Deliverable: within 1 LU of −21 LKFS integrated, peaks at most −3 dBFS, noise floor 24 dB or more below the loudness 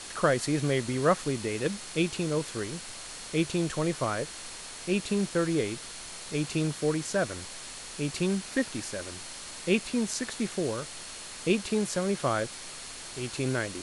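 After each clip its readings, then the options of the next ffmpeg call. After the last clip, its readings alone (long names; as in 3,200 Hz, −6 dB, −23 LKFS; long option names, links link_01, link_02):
interfering tone 4,300 Hz; level of the tone −51 dBFS; background noise floor −43 dBFS; target noise floor −55 dBFS; integrated loudness −30.5 LKFS; sample peak −10.5 dBFS; target loudness −21.0 LKFS
→ -af "bandreject=frequency=4300:width=30"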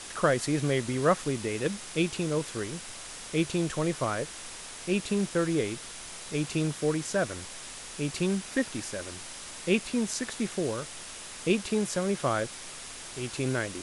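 interfering tone none found; background noise floor −43 dBFS; target noise floor −55 dBFS
→ -af "afftdn=noise_reduction=12:noise_floor=-43"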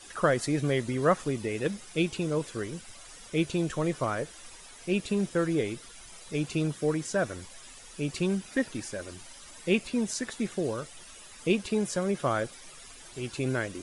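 background noise floor −49 dBFS; target noise floor −55 dBFS
→ -af "afftdn=noise_reduction=6:noise_floor=-49"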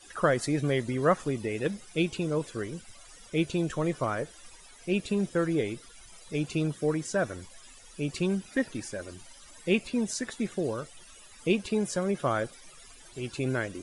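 background noise floor −52 dBFS; target noise floor −55 dBFS
→ -af "afftdn=noise_reduction=6:noise_floor=-52"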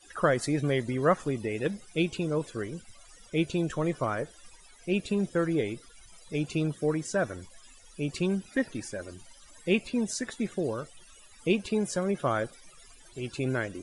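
background noise floor −55 dBFS; integrated loudness −30.5 LKFS; sample peak −10.5 dBFS; target loudness −21.0 LKFS
→ -af "volume=9.5dB,alimiter=limit=-3dB:level=0:latency=1"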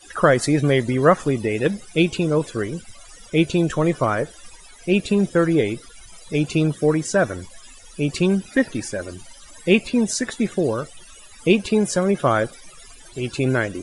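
integrated loudness −21.0 LKFS; sample peak −3.0 dBFS; background noise floor −45 dBFS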